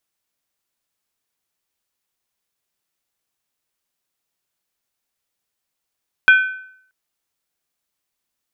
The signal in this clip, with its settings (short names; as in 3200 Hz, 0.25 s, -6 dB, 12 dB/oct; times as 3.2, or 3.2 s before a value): skin hit, lowest mode 1520 Hz, modes 3, decay 0.65 s, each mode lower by 9 dB, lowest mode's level -4.5 dB